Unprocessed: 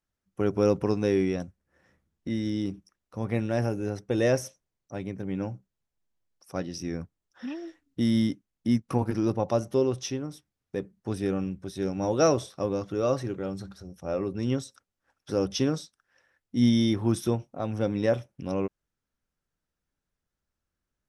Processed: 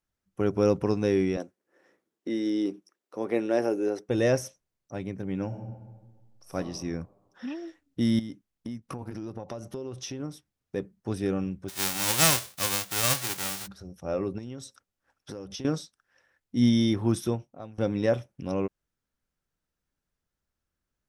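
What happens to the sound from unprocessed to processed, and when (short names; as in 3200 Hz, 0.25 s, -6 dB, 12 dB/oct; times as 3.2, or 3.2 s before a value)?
1.37–4.09 resonant high-pass 360 Hz, resonance Q 2.2
5.46–6.55 reverb throw, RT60 1.4 s, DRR -0.5 dB
8.19–10.2 compressor 12:1, threshold -32 dBFS
11.68–13.66 spectral whitening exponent 0.1
14.38–15.65 compressor 16:1, threshold -34 dBFS
17.18–17.78 fade out, to -22.5 dB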